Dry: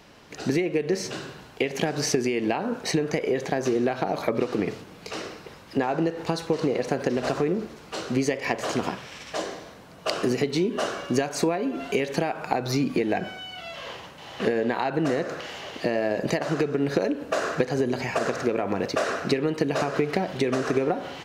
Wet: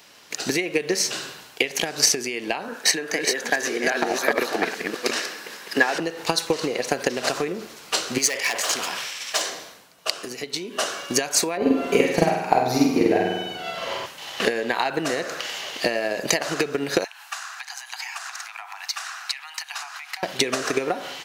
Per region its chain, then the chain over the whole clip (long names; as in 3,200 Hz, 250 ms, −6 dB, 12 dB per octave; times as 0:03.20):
0:02.68–0:06.00: delay that plays each chunk backwards 413 ms, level −2.5 dB + high-pass filter 180 Hz 24 dB per octave + parametric band 1,700 Hz +10 dB 0.24 octaves
0:08.18–0:09.50: low-shelf EQ 430 Hz −10.5 dB + hard clipping −25.5 dBFS + level that may fall only so fast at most 40 dB per second
0:11.57–0:14.06: tilt shelving filter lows +8 dB, about 1,300 Hz + double-tracking delay 38 ms −4 dB + flutter between parallel walls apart 8.4 metres, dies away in 1 s
0:17.04–0:20.23: Butterworth high-pass 750 Hz 96 dB per octave + downward compressor 2 to 1, threshold −44 dBFS
whole clip: spectral tilt +3.5 dB per octave; transient designer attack +7 dB, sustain +1 dB; automatic gain control gain up to 3.5 dB; level −1 dB